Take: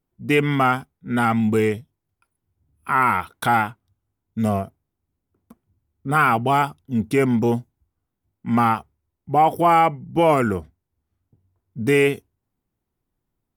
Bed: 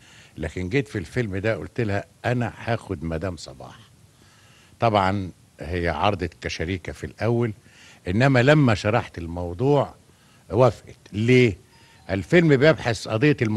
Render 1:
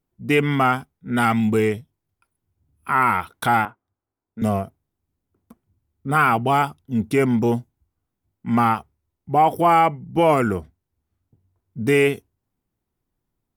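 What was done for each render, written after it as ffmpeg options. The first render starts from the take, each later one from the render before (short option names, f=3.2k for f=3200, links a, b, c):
-filter_complex "[0:a]asettb=1/sr,asplit=3[a][b][c];[a]atrim=end=1.104[d];[b]atrim=start=1.1:end=1.51,asetpts=PTS-STARTPTS,afade=t=in:d=0.004:c=qsin,afade=t=out:st=0.406:d=0.004:c=qsin,adynamicequalizer=threshold=0.02:dfrequency=1800:dqfactor=0.7:tfrequency=1800:tqfactor=0.7:attack=5:release=100:ratio=0.375:range=2.5:mode=boostabove:tftype=highshelf[e];[c]atrim=start=1.506[f];[d][e]acrossfade=d=0.004:c1=hsin:c2=qsin[g];[g][f]acrossfade=d=0.004:c1=qsin:c2=hsin,asettb=1/sr,asplit=3[h][i][j];[h]atrim=end=3.654[k];[i]atrim=start=3.65:end=4.42,asetpts=PTS-STARTPTS,afade=t=in:d=0.004:c=qsin,afade=t=out:st=0.766:d=0.004:c=qsin,acrossover=split=280 2000:gain=0.2 1 0.112[l][m][n];[l][m][n]amix=inputs=3:normalize=0[o];[j]atrim=start=4.416[p];[k][o]acrossfade=d=0.004:c1=hsin:c2=qsin[q];[q][p]acrossfade=d=0.004:c1=qsin:c2=hsin"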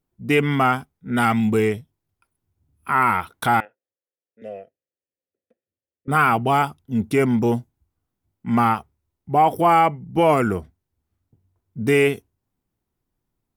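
-filter_complex "[0:a]asettb=1/sr,asplit=3[a][b][c];[a]atrim=end=3.604[d];[b]atrim=start=3.6:end=6.08,asetpts=PTS-STARTPTS,afade=t=in:d=0.004:c=qsin,afade=t=out:st=2.476:d=0.004:c=qsin,asplit=3[e][f][g];[e]bandpass=f=530:t=q:w=8,volume=0dB[h];[f]bandpass=f=1.84k:t=q:w=8,volume=-6dB[i];[g]bandpass=f=2.48k:t=q:w=8,volume=-9dB[j];[h][i][j]amix=inputs=3:normalize=0[k];[c]atrim=start=6.076[l];[d][k]acrossfade=d=0.004:c1=hsin:c2=qsin[m];[m][l]acrossfade=d=0.004:c1=qsin:c2=hsin"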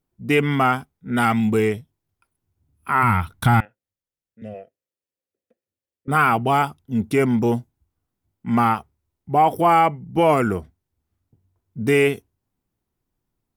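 -filter_complex "[0:a]asplit=3[a][b][c];[a]afade=t=out:st=3.02:d=0.02[d];[b]asubboost=boost=10:cutoff=150,afade=t=in:st=3.02:d=0.02,afade=t=out:st=4.53:d=0.02[e];[c]afade=t=in:st=4.53:d=0.02[f];[d][e][f]amix=inputs=3:normalize=0"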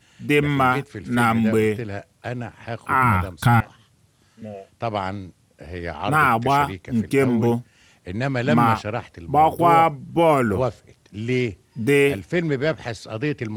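-filter_complex "[1:a]volume=-6dB[a];[0:a][a]amix=inputs=2:normalize=0"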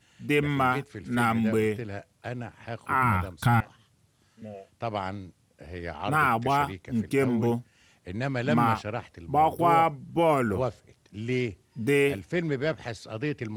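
-af "volume=-6dB"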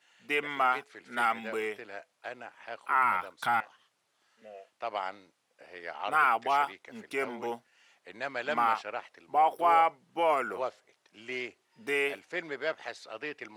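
-af "highpass=660,highshelf=f=5.9k:g=-10"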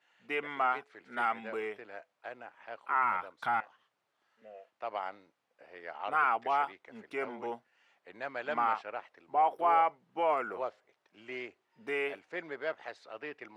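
-af "lowpass=f=1.4k:p=1,lowshelf=f=460:g=-5"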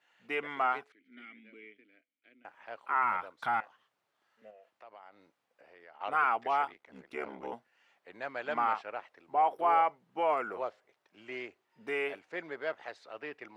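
-filter_complex "[0:a]asettb=1/sr,asplit=3[a][b][c];[a]atrim=end=0.924[d];[b]atrim=start=0.92:end=2.45,asetpts=PTS-STARTPTS,afade=t=in:d=0.004:c=qsin,afade=t=out:st=1.526:d=0.004:c=qsin,asplit=3[e][f][g];[e]bandpass=f=270:t=q:w=8,volume=0dB[h];[f]bandpass=f=2.29k:t=q:w=8,volume=-6dB[i];[g]bandpass=f=3.01k:t=q:w=8,volume=-9dB[j];[h][i][j]amix=inputs=3:normalize=0[k];[c]atrim=start=2.446[l];[d][k]acrossfade=d=0.004:c1=hsin:c2=qsin[m];[m][l]acrossfade=d=0.004:c1=qsin:c2=hsin,asettb=1/sr,asplit=3[n][o][p];[n]atrim=end=4.504[q];[o]atrim=start=4.5:end=6.01,asetpts=PTS-STARTPTS,afade=t=in:d=0.004:c=qsin,afade=t=out:st=1.506:d=0.004:c=qsin,acompressor=threshold=-56dB:ratio=2.5:attack=3.2:release=140:knee=1:detection=peak[r];[p]atrim=start=6.006[s];[q][r]acrossfade=d=0.004:c1=hsin:c2=qsin[t];[t][s]acrossfade=d=0.004:c1=qsin:c2=hsin,asettb=1/sr,asplit=3[u][v][w];[u]atrim=end=6.674[x];[v]atrim=start=6.67:end=7.53,asetpts=PTS-STARTPTS,afade=t=in:d=0.004:c=qsin,afade=t=out:st=0.856:d=0.004:c=qsin,aeval=exprs='val(0)*sin(2*PI*35*n/s)':c=same[y];[w]atrim=start=7.526[z];[x][y]acrossfade=d=0.004:c1=hsin:c2=qsin[aa];[aa][z]acrossfade=d=0.004:c1=qsin:c2=hsin"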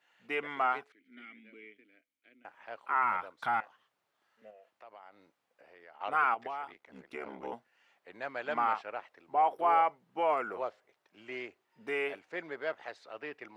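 -filter_complex "[0:a]asettb=1/sr,asplit=3[a][b][c];[a]atrim=end=6.344[d];[b]atrim=start=6.34:end=7.3,asetpts=PTS-STARTPTS,afade=t=in:d=0.004:c=qsin,afade=t=out:st=0.956:d=0.004:c=qsin,acompressor=threshold=-35dB:ratio=6:attack=3.2:release=140:knee=1:detection=peak[e];[c]atrim=start=7.296[f];[d][e]acrossfade=d=0.004:c1=hsin:c2=qsin[g];[g][f]acrossfade=d=0.004:c1=qsin:c2=hsin"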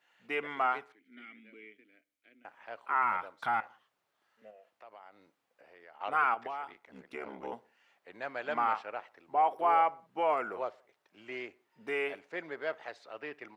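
-filter_complex "[0:a]asplit=2[a][b];[b]adelay=61,lowpass=f=2.6k:p=1,volume=-23dB,asplit=2[c][d];[d]adelay=61,lowpass=f=2.6k:p=1,volume=0.52,asplit=2[e][f];[f]adelay=61,lowpass=f=2.6k:p=1,volume=0.52[g];[a][c][e][g]amix=inputs=4:normalize=0"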